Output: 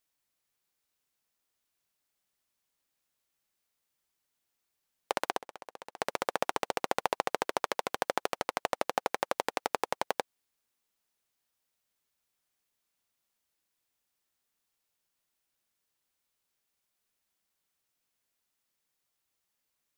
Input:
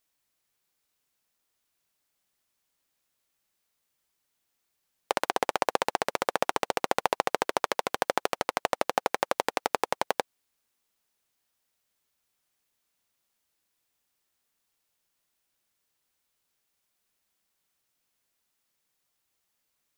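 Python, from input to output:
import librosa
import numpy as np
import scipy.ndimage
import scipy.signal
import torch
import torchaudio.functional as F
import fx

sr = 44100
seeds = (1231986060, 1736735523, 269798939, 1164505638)

y = fx.level_steps(x, sr, step_db=21, at=(5.36, 5.96), fade=0.02)
y = F.gain(torch.from_numpy(y), -4.0).numpy()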